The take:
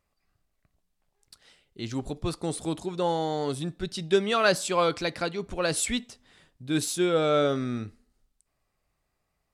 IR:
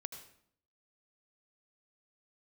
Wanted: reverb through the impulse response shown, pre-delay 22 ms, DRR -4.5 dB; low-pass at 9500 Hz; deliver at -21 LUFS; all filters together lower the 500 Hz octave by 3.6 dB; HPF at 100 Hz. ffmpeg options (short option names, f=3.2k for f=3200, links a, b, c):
-filter_complex "[0:a]highpass=100,lowpass=9.5k,equalizer=f=500:t=o:g=-4.5,asplit=2[a][b];[1:a]atrim=start_sample=2205,adelay=22[c];[b][c]afir=irnorm=-1:irlink=0,volume=7.5dB[d];[a][d]amix=inputs=2:normalize=0,volume=2.5dB"